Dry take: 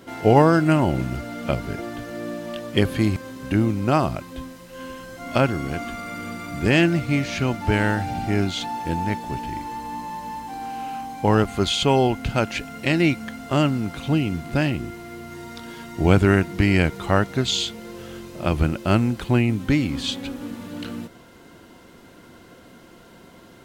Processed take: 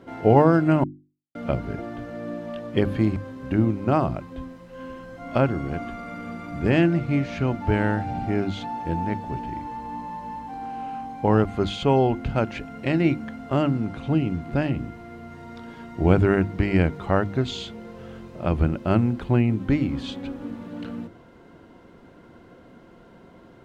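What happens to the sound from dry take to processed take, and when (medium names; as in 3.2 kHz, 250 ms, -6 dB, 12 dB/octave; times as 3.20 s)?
0.84–1.35 s: mute
13.57–14.42 s: low-pass 12 kHz 24 dB/octave
whole clip: low-pass 1.1 kHz 6 dB/octave; hum notches 50/100/150/200/250/300/350 Hz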